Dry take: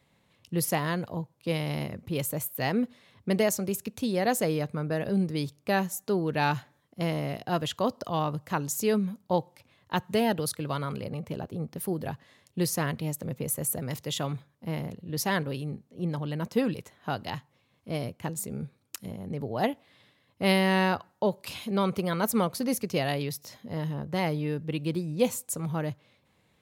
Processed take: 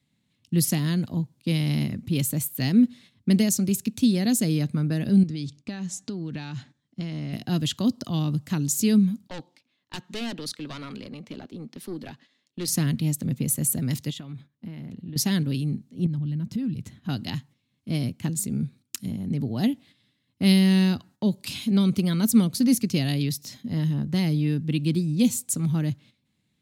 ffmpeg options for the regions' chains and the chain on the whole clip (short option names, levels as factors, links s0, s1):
-filter_complex "[0:a]asettb=1/sr,asplit=3[s0][s1][s2];[s0]atrim=end=5.234[s3];[s1]atrim=start=5.23:end=7.33,asetpts=PTS-STARTPTS,afade=t=in:d=0.004:c=qsin,afade=t=out:st=2.096:d=0.004:c=qsin,lowpass=f=7800:w=0.5412,lowpass=f=7800:w=1.3066,acompressor=threshold=0.0224:ratio=10:attack=3.2:release=140:knee=1:detection=peak[s4];[s2]atrim=start=7.326[s5];[s3][s4]acrossfade=d=0.004:c1=hsin:c2=qsin[s6];[s6][s5]acrossfade=d=0.004:c1=qsin:c2=hsin,asettb=1/sr,asplit=3[s7][s8][s9];[s7]atrim=end=9.284[s10];[s8]atrim=start=9.28:end=12.68,asetpts=PTS-STARTPTS,afade=t=in:d=0.004:c=qsin,afade=t=out:st=3.396:d=0.004:c=qsin,acrossover=split=250 6500:gain=0.0708 1 0.178[s11][s12][s13];[s11][s12][s13]amix=inputs=3:normalize=0,aeval=exprs='(tanh(25.1*val(0)+0.35)-tanh(0.35))/25.1':c=same[s14];[s9]atrim=start=12.676[s15];[s10][s14]acrossfade=d=0.004:c1=hsin:c2=qsin[s16];[s16][s15]acrossfade=d=0.004:c1=qsin:c2=hsin,asettb=1/sr,asplit=3[s17][s18][s19];[s17]atrim=end=14.104[s20];[s18]atrim=start=14.1:end=15.16,asetpts=PTS-STARTPTS,afade=t=in:d=0.004:c=qsin,afade=t=out:st=1.056:d=0.004:c=qsin,bass=f=250:g=-3,treble=f=4000:g=-10,acompressor=threshold=0.0112:ratio=10:attack=3.2:release=140:knee=1:detection=peak[s21];[s19]atrim=start=15.156[s22];[s20][s21]acrossfade=d=0.004:c1=hsin:c2=qsin[s23];[s23][s22]acrossfade=d=0.004:c1=qsin:c2=hsin,asettb=1/sr,asplit=3[s24][s25][s26];[s24]atrim=end=16.064[s27];[s25]atrim=start=16.06:end=17.09,asetpts=PTS-STARTPTS,afade=t=in:d=0.004:c=qsin,afade=t=out:st=1.026:d=0.004:c=qsin,bass=f=250:g=14,treble=f=4000:g=-3,acompressor=threshold=0.0141:ratio=4:attack=3.2:release=140:knee=1:detection=peak[s28];[s26]atrim=start=17.086[s29];[s27][s28]acrossfade=d=0.004:c1=hsin:c2=qsin[s30];[s30][s29]acrossfade=d=0.004:c1=qsin:c2=hsin,acrossover=split=500|3000[s31][s32][s33];[s32]acompressor=threshold=0.02:ratio=6[s34];[s31][s34][s33]amix=inputs=3:normalize=0,agate=range=0.282:threshold=0.002:ratio=16:detection=peak,equalizer=f=125:t=o:w=1:g=5,equalizer=f=250:t=o:w=1:g=10,equalizer=f=500:t=o:w=1:g=-9,equalizer=f=1000:t=o:w=1:g=-6,equalizer=f=4000:t=o:w=1:g=5,equalizer=f=8000:t=o:w=1:g=5,volume=1.19"